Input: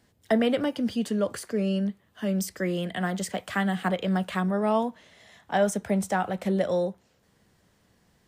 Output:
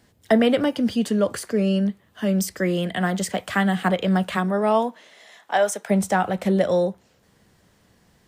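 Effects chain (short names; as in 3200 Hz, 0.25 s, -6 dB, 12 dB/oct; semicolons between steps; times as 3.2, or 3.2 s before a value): 4.36–5.89 HPF 180 Hz -> 630 Hz 12 dB/oct; gain +5.5 dB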